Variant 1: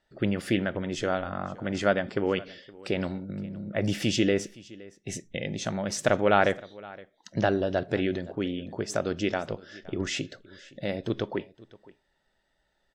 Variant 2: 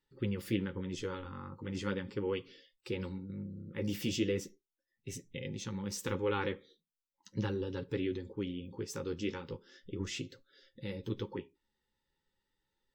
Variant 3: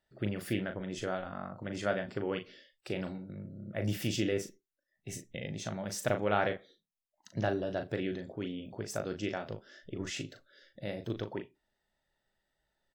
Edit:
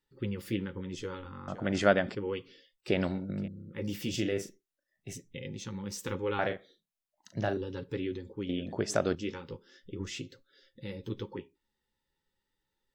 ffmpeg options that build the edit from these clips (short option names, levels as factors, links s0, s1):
-filter_complex "[0:a]asplit=3[s0][s1][s2];[2:a]asplit=2[s3][s4];[1:a]asplit=6[s5][s6][s7][s8][s9][s10];[s5]atrim=end=1.482[s11];[s0]atrim=start=1.478:end=2.152[s12];[s6]atrim=start=2.148:end=2.882[s13];[s1]atrim=start=2.878:end=3.482[s14];[s7]atrim=start=3.478:end=4.142[s15];[s3]atrim=start=4.138:end=5.132[s16];[s8]atrim=start=5.128:end=6.392[s17];[s4]atrim=start=6.388:end=7.572[s18];[s9]atrim=start=7.568:end=8.492[s19];[s2]atrim=start=8.488:end=9.152[s20];[s10]atrim=start=9.148[s21];[s11][s12]acrossfade=d=0.004:c1=hsin:c2=hsin[s22];[s22][s13]acrossfade=d=0.004:c1=hsin:c2=hsin[s23];[s23][s14]acrossfade=d=0.004:c1=hsin:c2=hsin[s24];[s24][s15]acrossfade=d=0.004:c1=hsin:c2=hsin[s25];[s25][s16]acrossfade=d=0.004:c1=hsin:c2=hsin[s26];[s26][s17]acrossfade=d=0.004:c1=hsin:c2=hsin[s27];[s27][s18]acrossfade=d=0.004:c1=hsin:c2=hsin[s28];[s28][s19]acrossfade=d=0.004:c1=hsin:c2=hsin[s29];[s29][s20]acrossfade=d=0.004:c1=hsin:c2=hsin[s30];[s30][s21]acrossfade=d=0.004:c1=hsin:c2=hsin"